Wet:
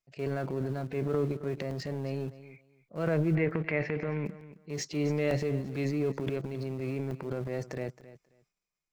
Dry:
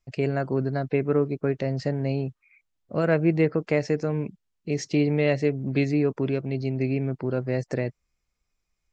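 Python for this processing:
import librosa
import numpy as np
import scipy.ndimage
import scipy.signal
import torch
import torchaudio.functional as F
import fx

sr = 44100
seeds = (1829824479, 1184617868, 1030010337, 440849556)

p1 = fx.low_shelf_res(x, sr, hz=120.0, db=-11.5, q=1.5)
p2 = fx.hpss(p1, sr, part='percussive', gain_db=-5)
p3 = fx.peak_eq(p2, sr, hz=240.0, db=-6.5, octaves=0.64)
p4 = fx.transient(p3, sr, attack_db=-4, sustain_db=10)
p5 = np.where(np.abs(p4) >= 10.0 ** (-27.5 / 20.0), p4, 0.0)
p6 = p4 + F.gain(torch.from_numpy(p5), -12.0).numpy()
p7 = fx.lowpass_res(p6, sr, hz=2200.0, q=3.1, at=(3.35, 4.26))
p8 = p7 + fx.echo_feedback(p7, sr, ms=268, feedback_pct=18, wet_db=-16.0, dry=0)
p9 = fx.buffer_crackle(p8, sr, first_s=0.81, period_s=0.9, block=64, kind='zero')
y = F.gain(torch.from_numpy(p9), -7.5).numpy()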